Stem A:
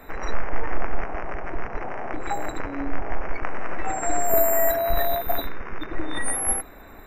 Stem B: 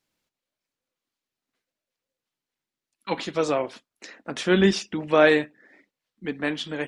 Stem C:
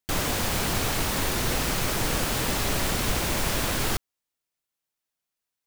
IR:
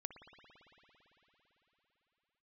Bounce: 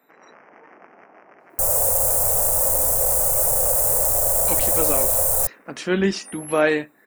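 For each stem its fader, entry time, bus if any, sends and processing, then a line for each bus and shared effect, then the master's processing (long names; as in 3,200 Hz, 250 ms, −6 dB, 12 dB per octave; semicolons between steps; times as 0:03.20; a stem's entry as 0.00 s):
−16.0 dB, 0.00 s, no send, high-pass filter 180 Hz 24 dB per octave
−1.5 dB, 1.40 s, no send, notch filter 3,500 Hz, Q 7.2
−0.5 dB, 1.50 s, no send, gain into a clipping stage and back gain 23 dB; drawn EQ curve 110 Hz 0 dB, 300 Hz −23 dB, 530 Hz +13 dB, 3,300 Hz −24 dB, 8,300 Hz +13 dB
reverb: not used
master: high-shelf EQ 7,400 Hz +4 dB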